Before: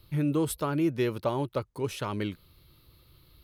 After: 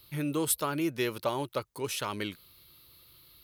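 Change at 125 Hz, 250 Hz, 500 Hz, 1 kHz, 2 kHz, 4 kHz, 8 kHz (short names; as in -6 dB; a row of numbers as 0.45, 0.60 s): -7.0, -4.5, -3.0, 0.0, +2.5, +4.5, +8.0 dB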